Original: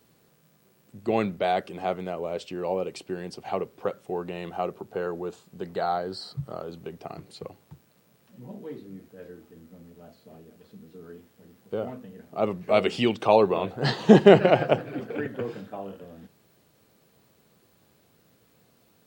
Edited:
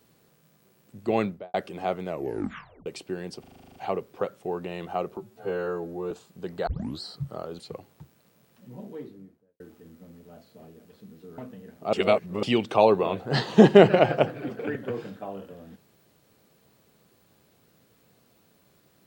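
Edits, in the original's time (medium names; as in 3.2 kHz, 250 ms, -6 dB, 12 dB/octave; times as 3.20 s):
1.20–1.54 s: studio fade out
2.08 s: tape stop 0.78 s
3.40 s: stutter 0.04 s, 10 plays
4.81–5.28 s: stretch 2×
5.84 s: tape start 0.34 s
6.76–7.30 s: delete
8.59–9.31 s: studio fade out
11.09–11.89 s: delete
12.44–12.94 s: reverse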